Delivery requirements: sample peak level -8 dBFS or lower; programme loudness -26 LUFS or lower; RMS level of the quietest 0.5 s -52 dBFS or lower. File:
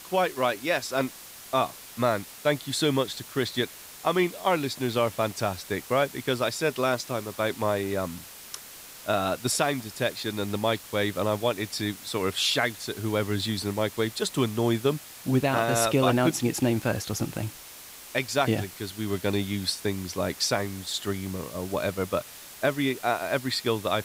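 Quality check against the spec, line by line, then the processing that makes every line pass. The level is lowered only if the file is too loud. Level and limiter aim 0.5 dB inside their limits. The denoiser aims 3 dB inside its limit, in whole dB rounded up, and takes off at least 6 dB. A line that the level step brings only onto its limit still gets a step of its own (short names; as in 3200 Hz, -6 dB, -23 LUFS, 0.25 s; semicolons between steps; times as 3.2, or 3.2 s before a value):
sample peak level -9.5 dBFS: OK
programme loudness -27.5 LUFS: OK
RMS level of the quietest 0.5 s -45 dBFS: fail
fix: denoiser 10 dB, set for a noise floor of -45 dBFS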